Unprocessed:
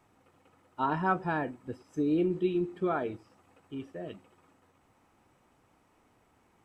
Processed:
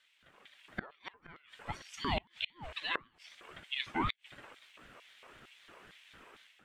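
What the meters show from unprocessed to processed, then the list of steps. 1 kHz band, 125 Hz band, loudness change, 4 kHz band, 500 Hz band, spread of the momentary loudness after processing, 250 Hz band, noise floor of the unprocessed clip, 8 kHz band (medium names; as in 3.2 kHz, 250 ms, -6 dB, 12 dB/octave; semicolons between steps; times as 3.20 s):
-7.0 dB, -7.5 dB, -7.0 dB, +14.0 dB, -14.0 dB, 20 LU, -14.0 dB, -68 dBFS, no reading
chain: LFO high-pass square 2.2 Hz 720–3000 Hz; level rider gain up to 10.5 dB; peaking EQ 2.5 kHz +12 dB 1.7 oct; inverted gate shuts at -16 dBFS, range -34 dB; ring modulator with a swept carrier 490 Hz, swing 45%, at 3.9 Hz; trim -3 dB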